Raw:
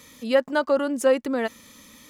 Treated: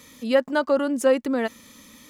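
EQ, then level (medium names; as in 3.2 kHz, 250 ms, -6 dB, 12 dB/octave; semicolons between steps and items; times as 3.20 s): peaking EQ 250 Hz +2.5 dB; 0.0 dB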